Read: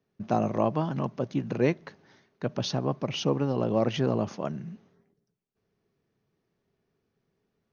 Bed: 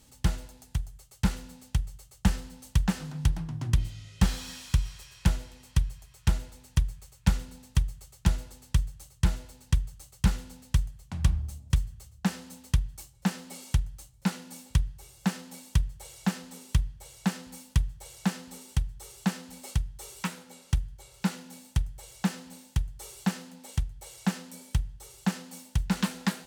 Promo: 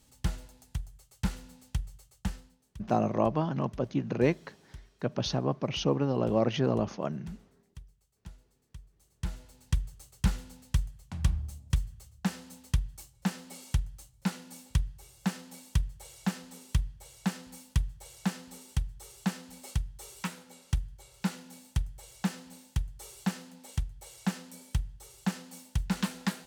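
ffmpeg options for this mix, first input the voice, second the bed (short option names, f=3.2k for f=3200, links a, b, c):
-filter_complex "[0:a]adelay=2600,volume=-1dB[a];[1:a]volume=15.5dB,afade=t=out:st=1.97:d=0.64:silence=0.11885,afade=t=in:st=8.93:d=0.88:silence=0.0944061[b];[a][b]amix=inputs=2:normalize=0"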